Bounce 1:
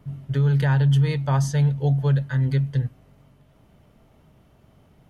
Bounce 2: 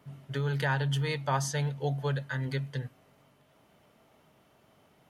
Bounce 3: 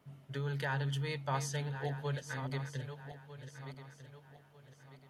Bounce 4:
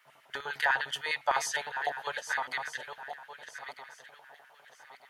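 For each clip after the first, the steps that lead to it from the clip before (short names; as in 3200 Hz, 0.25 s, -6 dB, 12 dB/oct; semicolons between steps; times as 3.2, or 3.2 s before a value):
HPF 550 Hz 6 dB/oct
regenerating reverse delay 0.624 s, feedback 57%, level -9.5 dB; gain -6.5 dB
LFO high-pass square 9.9 Hz 780–1700 Hz; gain +7 dB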